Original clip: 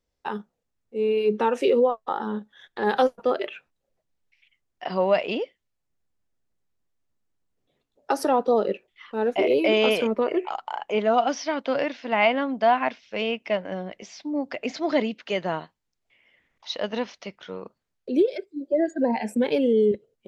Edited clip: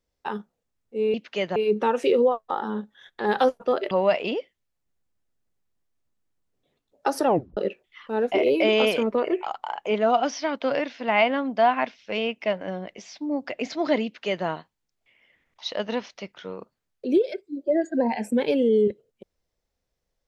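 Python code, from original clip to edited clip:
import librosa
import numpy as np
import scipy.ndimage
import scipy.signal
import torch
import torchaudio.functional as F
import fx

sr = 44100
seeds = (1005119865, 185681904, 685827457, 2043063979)

y = fx.edit(x, sr, fx.cut(start_s=3.49, length_s=1.46),
    fx.tape_stop(start_s=8.31, length_s=0.3),
    fx.duplicate(start_s=15.08, length_s=0.42, to_s=1.14), tone=tone)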